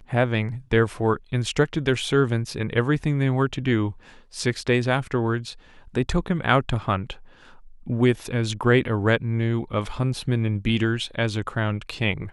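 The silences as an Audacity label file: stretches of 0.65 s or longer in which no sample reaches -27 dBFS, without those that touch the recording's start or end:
7.120000	7.890000	silence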